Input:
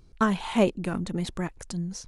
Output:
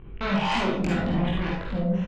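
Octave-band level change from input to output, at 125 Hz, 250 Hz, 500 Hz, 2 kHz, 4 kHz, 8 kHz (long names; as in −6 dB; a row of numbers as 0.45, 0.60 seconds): +5.0, +2.0, −0.5, +4.5, +5.0, −7.5 decibels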